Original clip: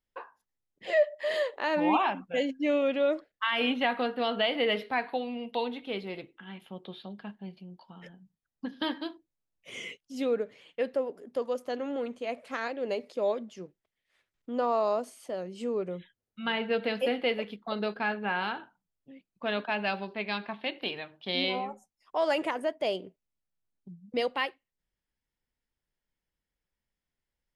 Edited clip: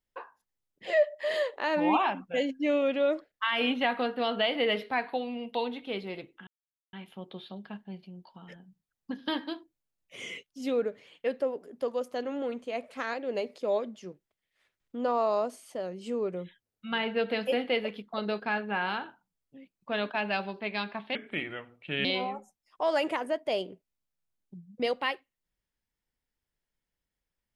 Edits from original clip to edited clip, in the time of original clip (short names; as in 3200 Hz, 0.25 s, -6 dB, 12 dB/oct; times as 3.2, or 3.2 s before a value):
6.47 insert silence 0.46 s
20.69–21.39 speed 78%